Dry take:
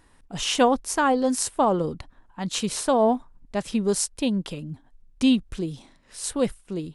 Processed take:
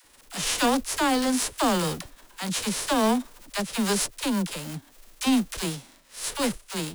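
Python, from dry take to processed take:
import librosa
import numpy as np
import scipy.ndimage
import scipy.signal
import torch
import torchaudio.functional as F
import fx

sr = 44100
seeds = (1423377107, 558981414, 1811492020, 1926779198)

y = fx.envelope_flatten(x, sr, power=0.3)
y = 10.0 ** (-15.0 / 20.0) * np.tanh(y / 10.0 ** (-15.0 / 20.0))
y = fx.dispersion(y, sr, late='lows', ms=51.0, hz=500.0)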